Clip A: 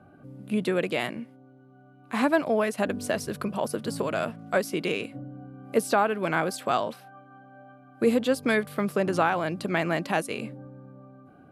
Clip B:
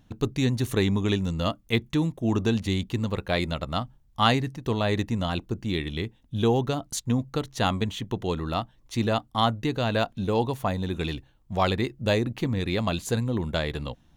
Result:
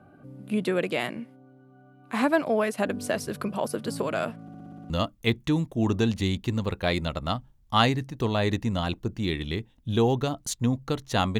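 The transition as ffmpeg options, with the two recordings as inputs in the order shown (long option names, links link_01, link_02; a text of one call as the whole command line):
ffmpeg -i cue0.wav -i cue1.wav -filter_complex "[0:a]apad=whole_dur=11.39,atrim=end=11.39,asplit=8[link_01][link_02][link_03][link_04][link_05][link_06][link_07][link_08];[link_01]atrim=end=4.482[link_09];[link_02]atrim=start=4.418:end=4.482[link_10];[link_03]atrim=start=4.418:end=4.482[link_11];[link_04]atrim=start=4.418:end=4.482[link_12];[link_05]atrim=start=4.418:end=4.482[link_13];[link_06]atrim=start=4.418:end=4.482[link_14];[link_07]atrim=start=4.418:end=4.482[link_15];[link_08]atrim=start=4.418:end=4.482[link_16];[1:a]atrim=start=1.358:end=7.85[link_17];[link_09][link_10]acrossfade=duration=0.004:curve1=hsin:curve2=hsin[link_18];[link_18][link_11]acrossfade=duration=0.004:curve1=hsin:curve2=hsin[link_19];[link_19][link_12]acrossfade=duration=0.004:curve1=hsin:curve2=hsin[link_20];[link_20][link_13]acrossfade=duration=0.004:curve1=hsin:curve2=hsin[link_21];[link_21][link_14]acrossfade=duration=0.004:curve1=hsin:curve2=hsin[link_22];[link_22][link_15]acrossfade=duration=0.004:curve1=hsin:curve2=hsin[link_23];[link_23][link_16]acrossfade=duration=0.004:curve1=hsin:curve2=hsin[link_24];[link_24][link_17]acrossfade=duration=0.004:curve1=hsin:curve2=hsin" out.wav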